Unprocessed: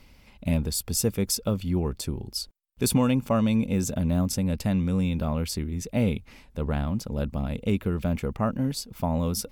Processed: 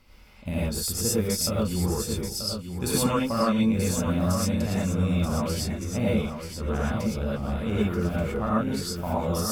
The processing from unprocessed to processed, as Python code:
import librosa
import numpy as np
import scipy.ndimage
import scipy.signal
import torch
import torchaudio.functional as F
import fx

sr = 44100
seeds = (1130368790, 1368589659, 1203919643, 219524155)

y = fx.peak_eq(x, sr, hz=1300.0, db=5.5, octaves=0.5)
y = fx.echo_feedback(y, sr, ms=933, feedback_pct=16, wet_db=-8.0)
y = fx.rev_gated(y, sr, seeds[0], gate_ms=140, shape='rising', drr_db=-7.0)
y = y * librosa.db_to_amplitude(-6.5)